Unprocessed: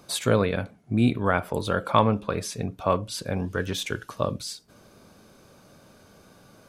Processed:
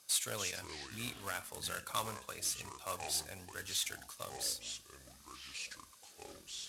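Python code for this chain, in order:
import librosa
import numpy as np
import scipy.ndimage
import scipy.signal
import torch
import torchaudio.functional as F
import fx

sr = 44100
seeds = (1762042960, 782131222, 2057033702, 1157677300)

y = fx.cvsd(x, sr, bps=64000)
y = fx.peak_eq(y, sr, hz=94.0, db=14.5, octaves=1.2)
y = fx.echo_pitch(y, sr, ms=247, semitones=-6, count=3, db_per_echo=-6.0)
y = np.diff(y, prepend=0.0)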